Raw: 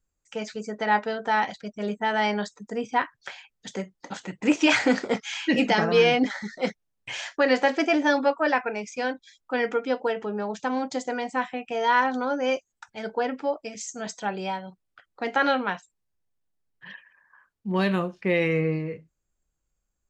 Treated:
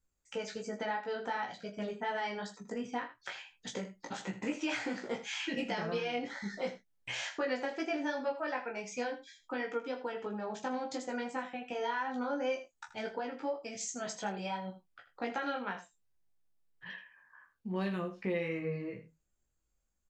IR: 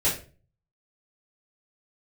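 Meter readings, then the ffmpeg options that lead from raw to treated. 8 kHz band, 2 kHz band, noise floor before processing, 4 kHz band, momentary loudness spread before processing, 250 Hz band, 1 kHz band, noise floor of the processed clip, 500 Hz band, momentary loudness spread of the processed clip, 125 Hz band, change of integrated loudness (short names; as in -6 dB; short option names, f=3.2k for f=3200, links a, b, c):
-5.5 dB, -12.5 dB, -79 dBFS, -11.0 dB, 16 LU, -12.0 dB, -12.5 dB, -79 dBFS, -11.0 dB, 9 LU, -11.0 dB, -12.0 dB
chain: -filter_complex "[0:a]acompressor=threshold=-32dB:ratio=4,flanger=delay=15.5:depth=2:speed=2.8,asplit=2[a][b];[b]adelay=25,volume=-9.5dB[c];[a][c]amix=inputs=2:normalize=0,asplit=2[d][e];[e]aecho=0:1:80:0.224[f];[d][f]amix=inputs=2:normalize=0"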